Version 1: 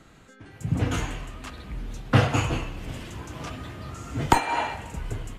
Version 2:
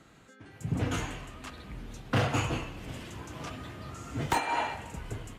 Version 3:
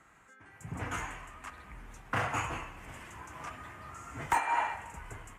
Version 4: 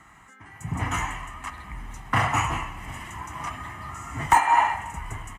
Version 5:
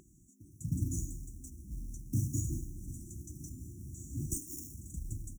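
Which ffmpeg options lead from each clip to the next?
ffmpeg -i in.wav -af "asoftclip=type=hard:threshold=-17dB,highpass=frequency=79:poles=1,volume=-3.5dB" out.wav
ffmpeg -i in.wav -af "equalizer=frequency=125:width_type=o:width=1:gain=-5,equalizer=frequency=250:width_type=o:width=1:gain=-5,equalizer=frequency=500:width_type=o:width=1:gain=-4,equalizer=frequency=1000:width_type=o:width=1:gain=7,equalizer=frequency=2000:width_type=o:width=1:gain=7,equalizer=frequency=4000:width_type=o:width=1:gain=-11,equalizer=frequency=8000:width_type=o:width=1:gain=5,volume=-5dB" out.wav
ffmpeg -i in.wav -af "aecho=1:1:1:0.57,volume=8dB" out.wav
ffmpeg -i in.wav -af "acrusher=bits=5:mode=log:mix=0:aa=0.000001,aeval=exprs='val(0)+0.0126*sin(2*PI*410*n/s)':channel_layout=same,afftfilt=real='re*(1-between(b*sr/4096,370,5400))':imag='im*(1-between(b*sr/4096,370,5400))':win_size=4096:overlap=0.75,volume=-4dB" out.wav

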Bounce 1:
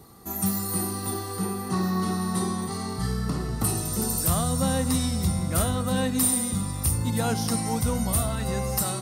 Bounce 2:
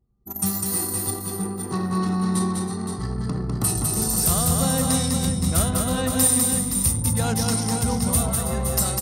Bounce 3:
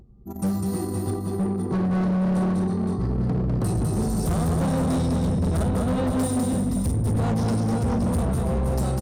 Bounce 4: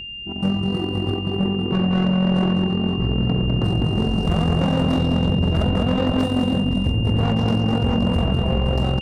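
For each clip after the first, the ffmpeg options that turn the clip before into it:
ffmpeg -i in.wav -filter_complex "[0:a]anlmdn=39.8,equalizer=frequency=7100:width=0.51:gain=5.5,asplit=2[link_01][link_02];[link_02]aecho=0:1:201|324|519:0.668|0.282|0.422[link_03];[link_01][link_03]amix=inputs=2:normalize=0" out.wav
ffmpeg -i in.wav -af "firequalizer=gain_entry='entry(290,0);entry(1600,-13);entry(13000,-25)':delay=0.05:min_phase=1,acompressor=mode=upward:threshold=-44dB:ratio=2.5,asoftclip=type=hard:threshold=-25.5dB,volume=5.5dB" out.wav
ffmpeg -i in.wav -af "adynamicsmooth=sensitivity=4.5:basefreq=1400,tremolo=f=44:d=0.571,aeval=exprs='val(0)+0.0141*sin(2*PI*2800*n/s)':channel_layout=same,volume=6dB" out.wav

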